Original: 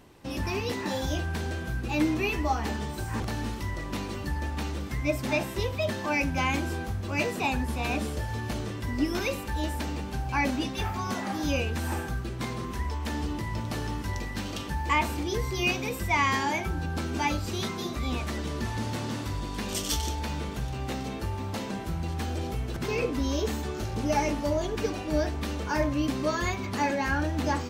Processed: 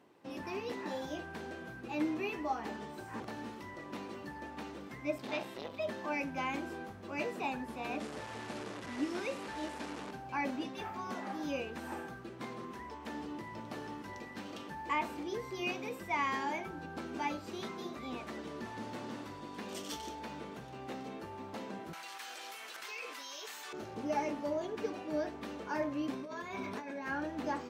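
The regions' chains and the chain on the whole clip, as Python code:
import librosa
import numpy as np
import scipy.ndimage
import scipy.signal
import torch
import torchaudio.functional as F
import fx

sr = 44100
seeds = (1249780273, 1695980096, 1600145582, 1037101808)

y = fx.chain(x, sr, fx.peak_eq(hz=3800.0, db=8.0, octaves=0.86),
    fx.transformer_sat(knee_hz=1100.0), at=(5.18, 5.79))
y = fx.chain(y, sr, fx.delta_mod(bps=64000, step_db=-27.5),
    fx.lowpass(hz=9300.0, slope=12), at=(8.0, 10.11))
y = fx.chain(y, sr, fx.highpass(hz=1400.0, slope=12),
    fx.high_shelf(hz=5000.0, db=7.5),
    fx.env_flatten(amount_pct=70), at=(21.93, 23.73))
y = fx.chain(y, sr, fx.ripple_eq(per_octave=1.6, db=6),
    fx.over_compress(threshold_db=-33.0, ratio=-1.0),
    fx.doubler(ms=32.0, db=-13.5), at=(26.13, 27.07))
y = scipy.signal.sosfilt(scipy.signal.butter(2, 240.0, 'highpass', fs=sr, output='sos'), y)
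y = fx.high_shelf(y, sr, hz=3200.0, db=-11.0)
y = y * librosa.db_to_amplitude(-6.5)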